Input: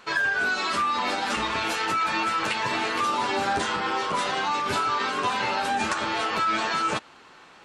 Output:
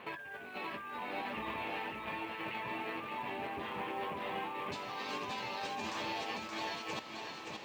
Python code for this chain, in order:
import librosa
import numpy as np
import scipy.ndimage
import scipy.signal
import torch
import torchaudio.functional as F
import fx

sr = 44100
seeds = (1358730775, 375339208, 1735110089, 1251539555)

y = fx.rattle_buzz(x, sr, strikes_db=-44.0, level_db=-26.0)
y = scipy.signal.sosfilt(scipy.signal.butter(2, 71.0, 'highpass', fs=sr, output='sos'), y)
y = fx.over_compress(y, sr, threshold_db=-34.0, ratio=-1.0)
y = fx.lowpass(y, sr, hz=fx.steps((0.0, 2800.0), (4.72, 6900.0)), slope=24)
y = y + 10.0 ** (-4.5 / 20.0) * np.pad(y, (int(574 * sr / 1000.0), 0))[:len(y)]
y = fx.quant_float(y, sr, bits=4)
y = fx.peak_eq(y, sr, hz=1400.0, db=-13.0, octaves=0.38)
y = F.gain(torch.from_numpy(y), -5.0).numpy()